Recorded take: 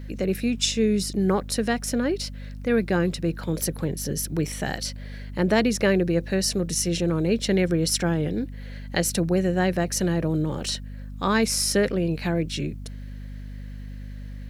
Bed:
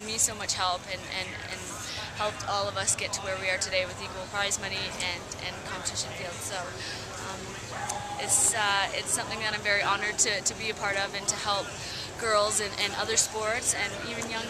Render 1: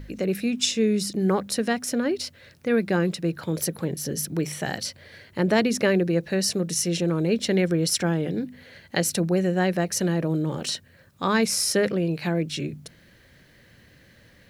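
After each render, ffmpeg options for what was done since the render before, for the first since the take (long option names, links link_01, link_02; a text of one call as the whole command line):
ffmpeg -i in.wav -af "bandreject=frequency=50:width_type=h:width=4,bandreject=frequency=100:width_type=h:width=4,bandreject=frequency=150:width_type=h:width=4,bandreject=frequency=200:width_type=h:width=4,bandreject=frequency=250:width_type=h:width=4" out.wav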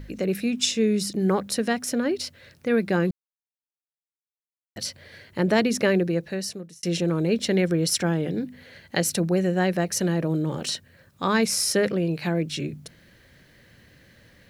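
ffmpeg -i in.wav -filter_complex "[0:a]asplit=4[link_01][link_02][link_03][link_04];[link_01]atrim=end=3.11,asetpts=PTS-STARTPTS,afade=type=out:start_time=3.106:duration=0.004:curve=hsin[link_05];[link_02]atrim=start=3.11:end=4.76,asetpts=PTS-STARTPTS,volume=0[link_06];[link_03]atrim=start=4.76:end=6.83,asetpts=PTS-STARTPTS,afade=type=in:duration=0.004:curve=hsin,afade=type=out:start_time=1.22:duration=0.85[link_07];[link_04]atrim=start=6.83,asetpts=PTS-STARTPTS,afade=type=in:duration=0.004:curve=hsin[link_08];[link_05][link_06][link_07][link_08]concat=n=4:v=0:a=1" out.wav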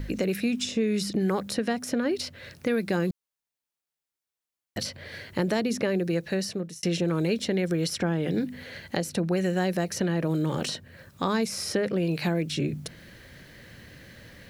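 ffmpeg -i in.wav -filter_complex "[0:a]acrossover=split=1100|4200[link_01][link_02][link_03];[link_01]acompressor=threshold=-29dB:ratio=4[link_04];[link_02]acompressor=threshold=-42dB:ratio=4[link_05];[link_03]acompressor=threshold=-45dB:ratio=4[link_06];[link_04][link_05][link_06]amix=inputs=3:normalize=0,asplit=2[link_07][link_08];[link_08]alimiter=limit=-23.5dB:level=0:latency=1:release=455,volume=0dB[link_09];[link_07][link_09]amix=inputs=2:normalize=0" out.wav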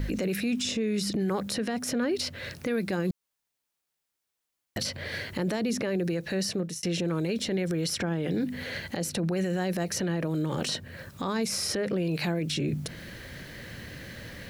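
ffmpeg -i in.wav -filter_complex "[0:a]asplit=2[link_01][link_02];[link_02]acompressor=threshold=-33dB:ratio=6,volume=0dB[link_03];[link_01][link_03]amix=inputs=2:normalize=0,alimiter=limit=-21dB:level=0:latency=1:release=27" out.wav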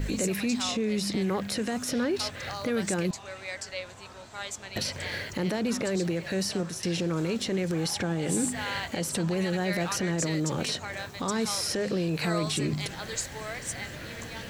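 ffmpeg -i in.wav -i bed.wav -filter_complex "[1:a]volume=-9dB[link_01];[0:a][link_01]amix=inputs=2:normalize=0" out.wav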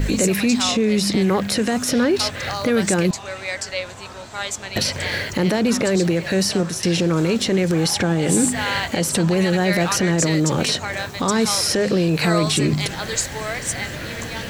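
ffmpeg -i in.wav -af "volume=10dB" out.wav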